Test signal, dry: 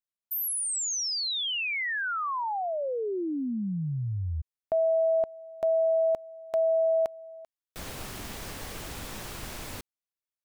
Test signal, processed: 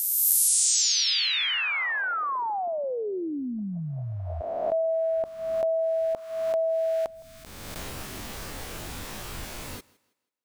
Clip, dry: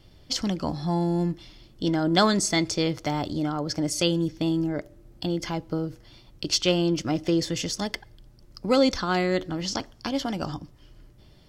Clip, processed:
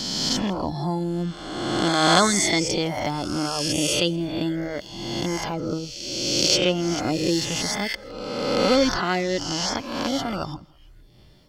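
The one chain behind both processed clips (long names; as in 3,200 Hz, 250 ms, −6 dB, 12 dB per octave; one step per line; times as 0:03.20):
peak hold with a rise ahead of every peak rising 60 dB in 1.89 s
reverb reduction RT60 0.86 s
feedback echo with a high-pass in the loop 163 ms, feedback 32%, high-pass 170 Hz, level −23.5 dB
level +1 dB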